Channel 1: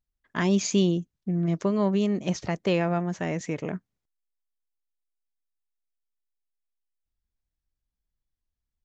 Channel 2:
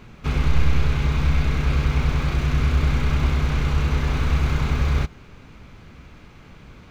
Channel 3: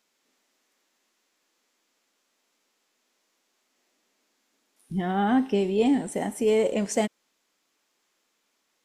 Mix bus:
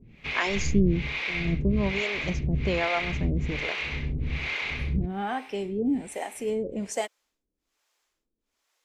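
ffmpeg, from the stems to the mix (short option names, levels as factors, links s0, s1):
-filter_complex "[0:a]volume=1.33[s0];[1:a]lowpass=3700,highshelf=f=1700:t=q:w=3:g=7,volume=0.668[s1];[2:a]volume=0.944[s2];[s0][s1][s2]amix=inputs=3:normalize=0,lowshelf=f=95:g=-5.5,acrossover=split=420[s3][s4];[s3]aeval=exprs='val(0)*(1-1/2+1/2*cos(2*PI*1.2*n/s))':c=same[s5];[s4]aeval=exprs='val(0)*(1-1/2-1/2*cos(2*PI*1.2*n/s))':c=same[s6];[s5][s6]amix=inputs=2:normalize=0"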